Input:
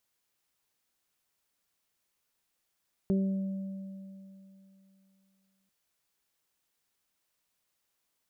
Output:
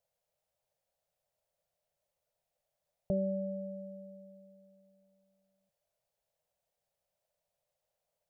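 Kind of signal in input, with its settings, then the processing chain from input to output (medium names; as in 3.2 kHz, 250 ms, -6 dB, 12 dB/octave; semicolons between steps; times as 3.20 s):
additive tone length 2.59 s, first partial 193 Hz, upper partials -5.5/-17 dB, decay 2.92 s, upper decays 0.62/2.92 s, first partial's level -23.5 dB
FFT filter 160 Hz 0 dB, 300 Hz -20 dB, 590 Hz +12 dB, 1.1 kHz -10 dB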